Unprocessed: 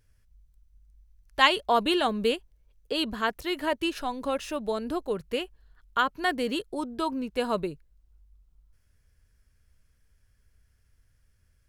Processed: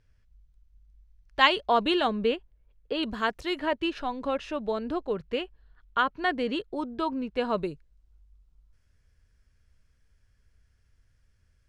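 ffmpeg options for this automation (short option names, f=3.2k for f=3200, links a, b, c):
-af "asetnsamples=n=441:p=0,asendcmd='2.15 lowpass f 2800;3.03 lowpass f 7000;3.59 lowpass f 3700;7.58 lowpass f 7200',lowpass=4.8k"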